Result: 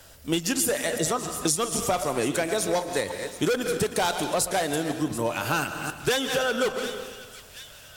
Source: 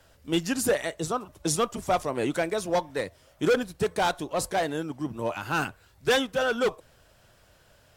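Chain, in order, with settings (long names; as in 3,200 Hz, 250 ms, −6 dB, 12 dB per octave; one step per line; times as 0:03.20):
delay that plays each chunk backwards 164 ms, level −12 dB
high-shelf EQ 4,500 Hz +10.5 dB
delay with a high-pass on its return 729 ms, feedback 54%, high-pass 2,200 Hz, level −19 dB
on a send at −12 dB: convolution reverb RT60 1.3 s, pre-delay 85 ms
on the sum: downward compressor 6 to 1, threshold −28 dBFS, peak gain reduction 11 dB
level +6 dB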